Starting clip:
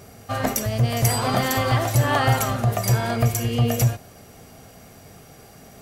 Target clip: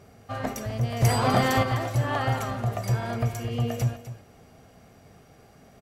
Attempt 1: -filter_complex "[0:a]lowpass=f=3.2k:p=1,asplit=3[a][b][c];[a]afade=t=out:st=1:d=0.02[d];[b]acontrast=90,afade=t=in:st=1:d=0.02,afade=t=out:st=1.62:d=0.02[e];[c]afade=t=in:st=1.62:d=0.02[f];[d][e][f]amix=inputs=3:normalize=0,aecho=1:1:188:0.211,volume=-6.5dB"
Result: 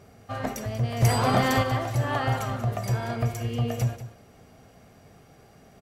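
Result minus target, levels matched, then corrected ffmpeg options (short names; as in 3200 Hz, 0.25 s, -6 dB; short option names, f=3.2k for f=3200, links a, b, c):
echo 64 ms early
-filter_complex "[0:a]lowpass=f=3.2k:p=1,asplit=3[a][b][c];[a]afade=t=out:st=1:d=0.02[d];[b]acontrast=90,afade=t=in:st=1:d=0.02,afade=t=out:st=1.62:d=0.02[e];[c]afade=t=in:st=1.62:d=0.02[f];[d][e][f]amix=inputs=3:normalize=0,aecho=1:1:252:0.211,volume=-6.5dB"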